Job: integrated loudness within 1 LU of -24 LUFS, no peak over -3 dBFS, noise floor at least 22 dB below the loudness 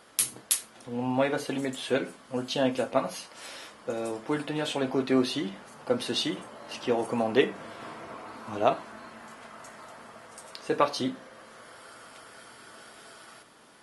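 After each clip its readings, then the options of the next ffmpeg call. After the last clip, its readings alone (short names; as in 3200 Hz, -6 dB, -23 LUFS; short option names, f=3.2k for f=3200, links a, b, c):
loudness -29.5 LUFS; peak -5.5 dBFS; loudness target -24.0 LUFS
-> -af "volume=5.5dB,alimiter=limit=-3dB:level=0:latency=1"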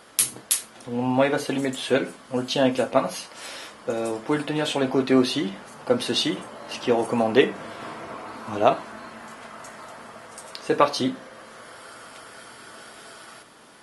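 loudness -24.0 LUFS; peak -3.0 dBFS; noise floor -49 dBFS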